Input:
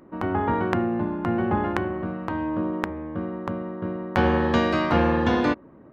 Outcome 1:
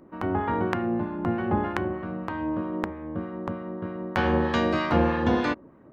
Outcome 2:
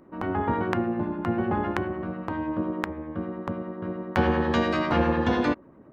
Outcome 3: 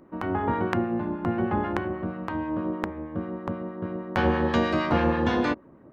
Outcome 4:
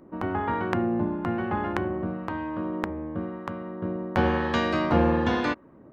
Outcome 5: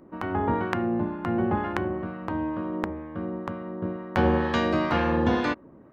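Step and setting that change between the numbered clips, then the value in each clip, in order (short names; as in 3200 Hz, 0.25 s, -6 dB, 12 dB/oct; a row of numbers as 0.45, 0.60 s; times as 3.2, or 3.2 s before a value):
harmonic tremolo, rate: 3.2, 10, 6.3, 1, 2.1 Hz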